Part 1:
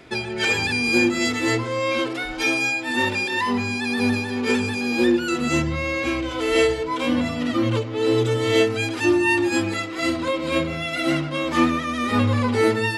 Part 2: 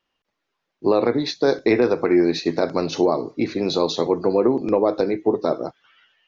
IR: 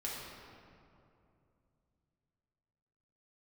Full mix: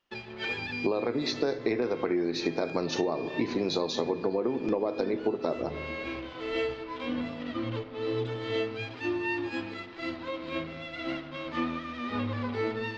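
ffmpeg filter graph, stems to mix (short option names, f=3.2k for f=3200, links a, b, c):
-filter_complex "[0:a]bandreject=f=50:t=h:w=6,bandreject=f=100:t=h:w=6,bandreject=f=150:t=h:w=6,aeval=exprs='sgn(val(0))*max(abs(val(0))-0.02,0)':c=same,lowpass=f=4.5k:w=0.5412,lowpass=f=4.5k:w=1.3066,volume=-11.5dB,asplit=2[a][b];[b]volume=-12dB[c];[1:a]volume=-3dB,asplit=3[d][e][f];[e]volume=-15.5dB[g];[f]apad=whole_len=572369[h];[a][h]sidechaincompress=threshold=-24dB:ratio=8:attack=16:release=593[i];[2:a]atrim=start_sample=2205[j];[c][g]amix=inputs=2:normalize=0[k];[k][j]afir=irnorm=-1:irlink=0[l];[i][d][l]amix=inputs=3:normalize=0,acompressor=threshold=-24dB:ratio=12"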